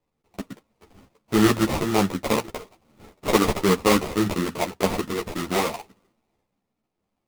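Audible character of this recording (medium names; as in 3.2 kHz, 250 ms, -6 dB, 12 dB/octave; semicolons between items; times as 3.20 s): aliases and images of a low sample rate 1.6 kHz, jitter 20%; a shimmering, thickened sound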